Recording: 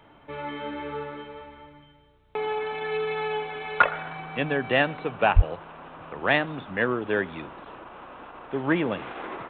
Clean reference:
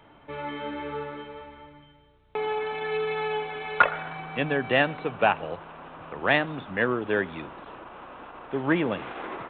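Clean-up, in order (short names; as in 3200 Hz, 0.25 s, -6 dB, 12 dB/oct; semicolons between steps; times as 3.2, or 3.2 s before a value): de-plosive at 5.35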